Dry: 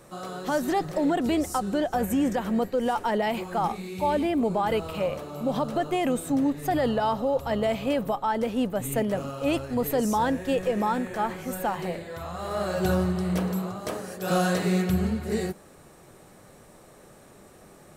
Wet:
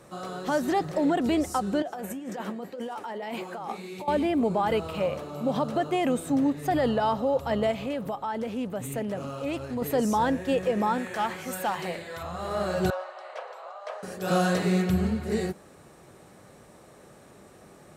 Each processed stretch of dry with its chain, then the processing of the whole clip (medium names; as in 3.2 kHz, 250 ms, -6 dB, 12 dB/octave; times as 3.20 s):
1.82–4.08 s: high-pass 220 Hz + compressor with a negative ratio -30 dBFS + flange 1.9 Hz, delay 5.9 ms, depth 7.4 ms, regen +70%
7.71–9.82 s: compression 2:1, threshold -31 dBFS + treble shelf 9.3 kHz +3.5 dB + loudspeaker Doppler distortion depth 0.1 ms
10.98–12.23 s: tilt shelf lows -5 dB, about 750 Hz + overload inside the chain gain 21.5 dB
12.90–14.03 s: steep high-pass 540 Hz 48 dB/octave + tape spacing loss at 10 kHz 22 dB
whole clip: high-pass 52 Hz; treble shelf 11 kHz -8.5 dB